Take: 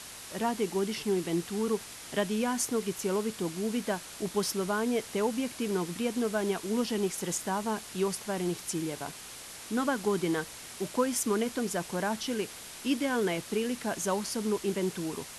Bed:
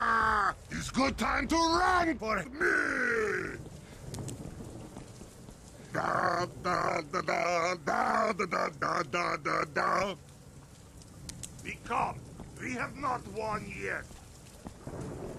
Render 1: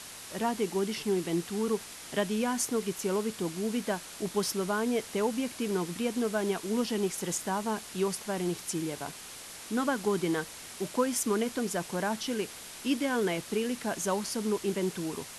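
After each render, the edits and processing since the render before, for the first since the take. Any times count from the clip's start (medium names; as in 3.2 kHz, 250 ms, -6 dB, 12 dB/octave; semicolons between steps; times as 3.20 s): de-hum 60 Hz, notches 2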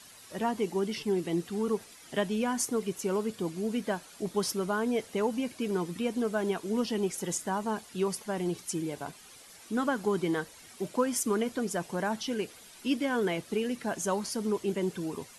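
noise reduction 11 dB, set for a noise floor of -45 dBFS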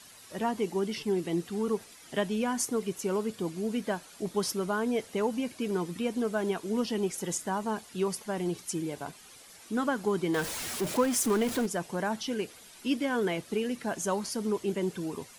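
10.34–11.66 s: jump at every zero crossing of -31.5 dBFS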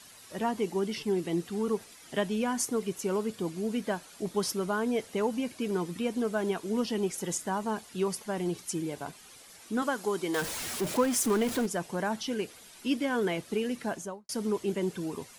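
9.82–10.42 s: tone controls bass -10 dB, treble +5 dB; 13.85–14.29 s: studio fade out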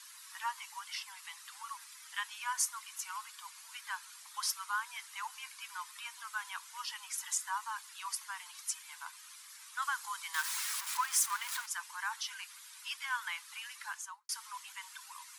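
steep high-pass 940 Hz 72 dB/octave; peaking EQ 2.9 kHz -2.5 dB 0.7 oct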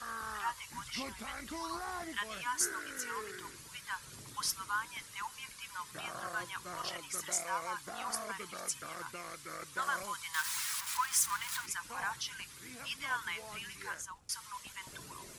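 add bed -15 dB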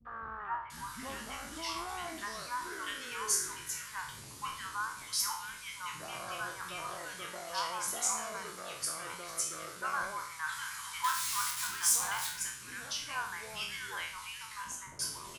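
spectral sustain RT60 0.56 s; three bands offset in time lows, mids, highs 50/700 ms, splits 260/1800 Hz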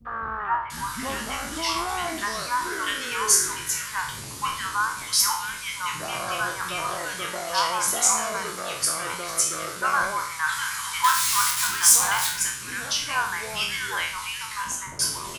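trim +12 dB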